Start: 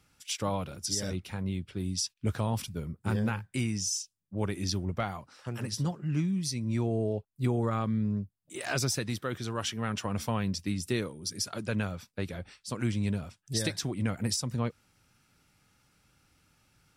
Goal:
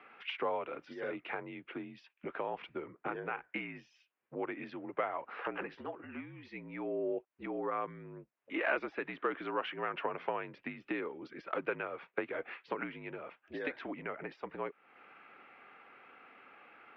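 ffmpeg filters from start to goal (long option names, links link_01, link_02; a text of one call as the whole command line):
ffmpeg -i in.wav -af "acompressor=threshold=-44dB:ratio=6,highpass=frequency=390:width_type=q:width=0.5412,highpass=frequency=390:width_type=q:width=1.307,lowpass=frequency=2600:width_type=q:width=0.5176,lowpass=frequency=2600:width_type=q:width=0.7071,lowpass=frequency=2600:width_type=q:width=1.932,afreqshift=-53,volume=15.5dB" out.wav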